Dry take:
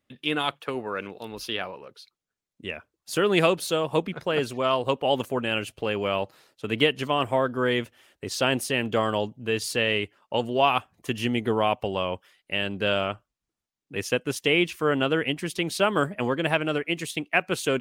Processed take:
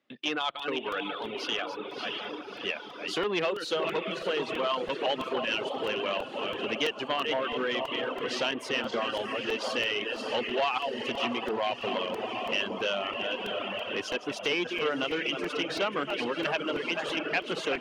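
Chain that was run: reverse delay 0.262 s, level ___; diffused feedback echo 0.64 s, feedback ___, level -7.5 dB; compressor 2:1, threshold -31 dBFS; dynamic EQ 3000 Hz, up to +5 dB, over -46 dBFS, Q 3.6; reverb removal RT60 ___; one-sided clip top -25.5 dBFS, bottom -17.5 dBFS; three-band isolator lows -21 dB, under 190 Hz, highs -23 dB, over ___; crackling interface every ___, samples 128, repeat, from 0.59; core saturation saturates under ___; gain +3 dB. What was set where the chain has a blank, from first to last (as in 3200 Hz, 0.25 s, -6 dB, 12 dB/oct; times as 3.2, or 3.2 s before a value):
-7 dB, 67%, 1.2 s, 5600 Hz, 0.33 s, 860 Hz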